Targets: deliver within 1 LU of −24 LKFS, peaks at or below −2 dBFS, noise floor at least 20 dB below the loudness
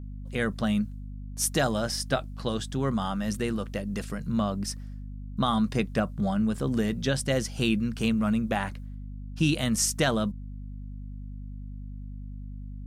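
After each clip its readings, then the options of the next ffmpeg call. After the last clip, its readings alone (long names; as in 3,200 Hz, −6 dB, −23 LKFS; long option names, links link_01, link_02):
mains hum 50 Hz; hum harmonics up to 250 Hz; level of the hum −36 dBFS; integrated loudness −28.0 LKFS; sample peak −13.0 dBFS; target loudness −24.0 LKFS
→ -af "bandreject=frequency=50:width_type=h:width=6,bandreject=frequency=100:width_type=h:width=6,bandreject=frequency=150:width_type=h:width=6,bandreject=frequency=200:width_type=h:width=6,bandreject=frequency=250:width_type=h:width=6"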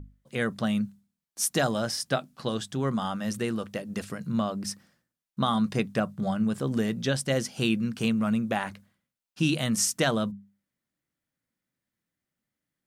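mains hum none found; integrated loudness −28.5 LKFS; sample peak −12.5 dBFS; target loudness −24.0 LKFS
→ -af "volume=4.5dB"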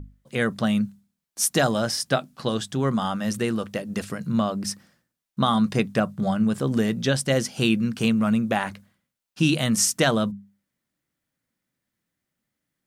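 integrated loudness −24.0 LKFS; sample peak −8.0 dBFS; background noise floor −84 dBFS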